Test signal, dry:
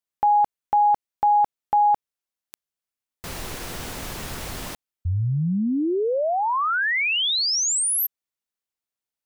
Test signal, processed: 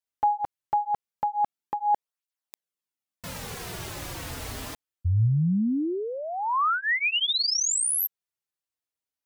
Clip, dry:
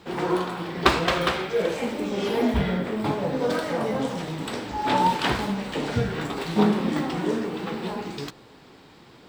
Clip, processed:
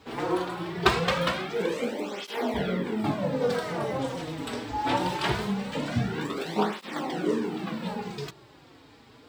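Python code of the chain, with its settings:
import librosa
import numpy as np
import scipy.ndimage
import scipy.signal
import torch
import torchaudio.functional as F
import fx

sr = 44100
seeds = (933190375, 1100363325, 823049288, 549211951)

y = fx.dynamic_eq(x, sr, hz=110.0, q=6.3, threshold_db=-46.0, ratio=4.0, max_db=3)
y = fx.flanger_cancel(y, sr, hz=0.22, depth_ms=5.8)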